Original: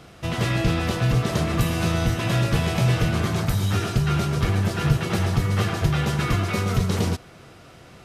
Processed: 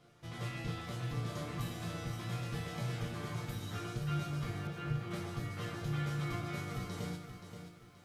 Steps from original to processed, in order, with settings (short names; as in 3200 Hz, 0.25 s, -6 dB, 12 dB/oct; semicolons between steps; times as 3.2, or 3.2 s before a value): notch 2700 Hz, Q 19; resonator bank A#2 major, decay 0.35 s; 4.67–5.11 air absorption 240 m; lo-fi delay 0.527 s, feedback 35%, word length 11-bit, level -9 dB; gain -2.5 dB